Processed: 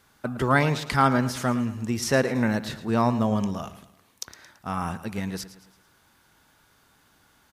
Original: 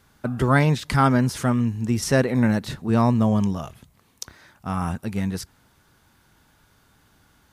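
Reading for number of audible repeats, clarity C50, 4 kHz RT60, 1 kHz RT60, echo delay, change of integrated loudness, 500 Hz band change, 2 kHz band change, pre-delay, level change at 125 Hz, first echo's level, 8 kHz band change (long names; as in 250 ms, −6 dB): 3, no reverb audible, no reverb audible, no reverb audible, 111 ms, −3.5 dB, −1.5 dB, 0.0 dB, no reverb audible, −6.0 dB, −14.5 dB, −1.5 dB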